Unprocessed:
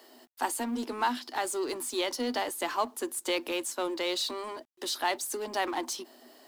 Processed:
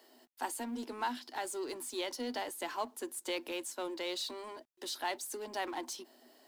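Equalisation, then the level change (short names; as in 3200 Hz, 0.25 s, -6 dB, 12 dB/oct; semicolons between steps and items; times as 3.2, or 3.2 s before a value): notch 1200 Hz, Q 12; -7.0 dB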